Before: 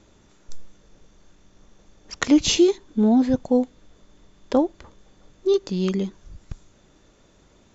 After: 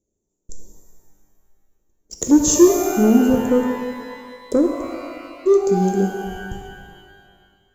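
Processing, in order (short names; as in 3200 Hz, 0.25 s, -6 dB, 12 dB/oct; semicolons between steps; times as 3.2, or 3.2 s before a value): gate -45 dBFS, range -20 dB; EQ curve 230 Hz 0 dB, 450 Hz +5 dB, 1500 Hz -27 dB, 4500 Hz -11 dB, 7100 Hz +10 dB; sample leveller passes 1; shimmer reverb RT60 2 s, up +12 st, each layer -8 dB, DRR 3.5 dB; gain -1.5 dB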